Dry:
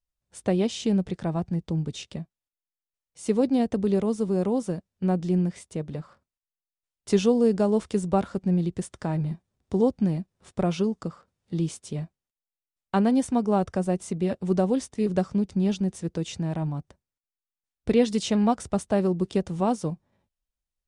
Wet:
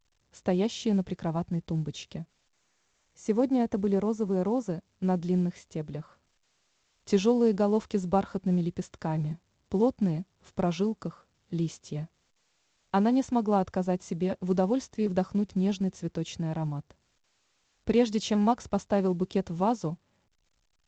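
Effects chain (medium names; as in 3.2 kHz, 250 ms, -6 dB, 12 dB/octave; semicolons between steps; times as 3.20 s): dynamic bell 910 Hz, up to +5 dB, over -42 dBFS, Q 3.3; time-frequency box 2.51–4.70 s, 2.4–5.6 kHz -6 dB; trim -3 dB; A-law 128 kbps 16 kHz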